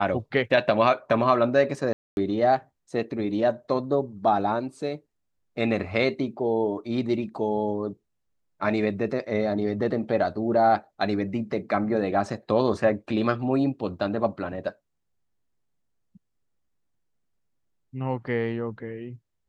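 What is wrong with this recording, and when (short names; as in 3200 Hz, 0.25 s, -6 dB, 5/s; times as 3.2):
1.93–2.17 gap 0.241 s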